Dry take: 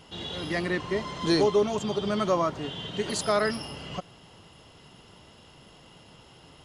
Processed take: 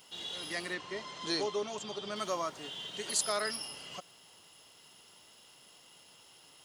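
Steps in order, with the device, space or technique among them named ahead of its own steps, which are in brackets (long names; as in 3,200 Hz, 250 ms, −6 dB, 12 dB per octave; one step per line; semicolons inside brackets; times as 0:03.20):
turntable without a phono preamp (RIAA equalisation recording; white noise bed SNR 34 dB)
0:00.74–0:02.16: high-frequency loss of the air 67 metres
level −8.5 dB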